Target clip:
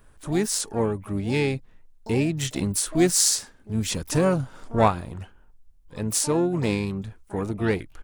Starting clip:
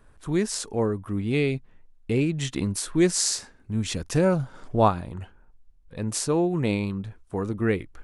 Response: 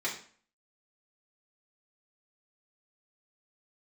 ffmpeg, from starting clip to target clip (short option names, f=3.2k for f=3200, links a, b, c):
-filter_complex "[0:a]crystalizer=i=1:c=0,asplit=3[a][b][c];[b]asetrate=33038,aresample=44100,atempo=1.33484,volume=-16dB[d];[c]asetrate=88200,aresample=44100,atempo=0.5,volume=-14dB[e];[a][d][e]amix=inputs=3:normalize=0"